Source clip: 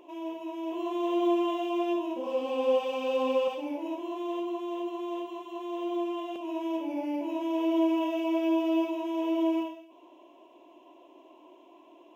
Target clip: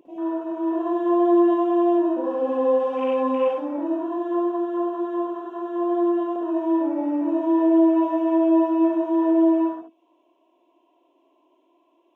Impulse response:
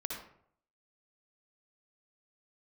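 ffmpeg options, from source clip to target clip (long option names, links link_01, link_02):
-filter_complex "[0:a]afwtdn=0.0112,asplit=2[link_01][link_02];[link_02]alimiter=level_in=0.5dB:limit=-24dB:level=0:latency=1,volume=-0.5dB,volume=-2dB[link_03];[link_01][link_03]amix=inputs=2:normalize=0[link_04];[1:a]atrim=start_sample=2205,atrim=end_sample=3528[link_05];[link_04][link_05]afir=irnorm=-1:irlink=0,volume=2.5dB"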